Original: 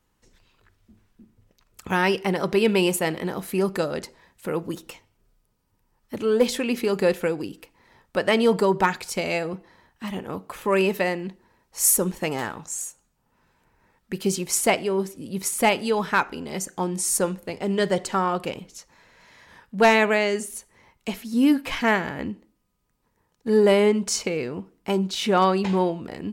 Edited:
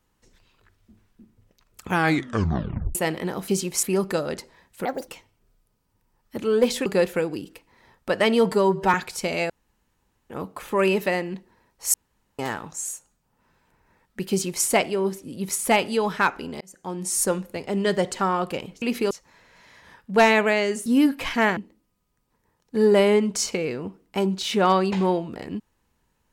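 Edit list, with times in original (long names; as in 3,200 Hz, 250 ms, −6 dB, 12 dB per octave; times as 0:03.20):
0:01.91: tape stop 1.04 s
0:04.50–0:04.86: play speed 158%
0:06.64–0:06.93: move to 0:18.75
0:08.59–0:08.87: time-stretch 1.5×
0:09.43–0:10.23: fill with room tone
0:11.87–0:12.32: fill with room tone
0:14.23–0:14.58: duplicate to 0:03.48
0:16.54–0:17.11: fade in linear
0:20.50–0:21.32: remove
0:22.03–0:22.29: remove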